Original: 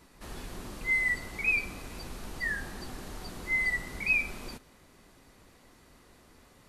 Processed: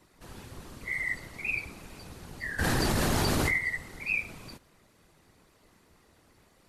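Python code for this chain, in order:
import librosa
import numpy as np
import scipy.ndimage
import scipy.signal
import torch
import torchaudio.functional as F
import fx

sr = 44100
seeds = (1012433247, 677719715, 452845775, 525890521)

y = fx.whisperise(x, sr, seeds[0])
y = fx.env_flatten(y, sr, amount_pct=100, at=(2.58, 3.57), fade=0.02)
y = F.gain(torch.from_numpy(y), -4.0).numpy()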